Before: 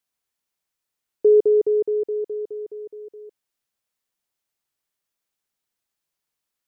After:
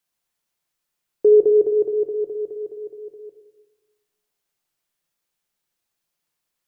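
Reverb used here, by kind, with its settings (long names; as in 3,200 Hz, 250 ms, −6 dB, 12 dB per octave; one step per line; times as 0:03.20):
rectangular room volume 490 cubic metres, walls mixed, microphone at 0.87 metres
level +2 dB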